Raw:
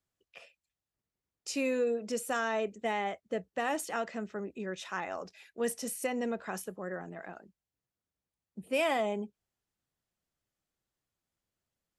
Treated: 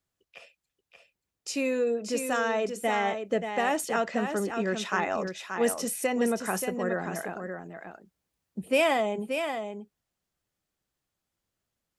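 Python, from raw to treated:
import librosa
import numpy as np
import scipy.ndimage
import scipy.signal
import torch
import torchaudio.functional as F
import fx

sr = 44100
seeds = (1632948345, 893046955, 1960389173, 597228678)

y = fx.rider(x, sr, range_db=3, speed_s=0.5)
y = y + 10.0 ** (-7.0 / 20.0) * np.pad(y, (int(580 * sr / 1000.0), 0))[:len(y)]
y = y * librosa.db_to_amplitude(5.5)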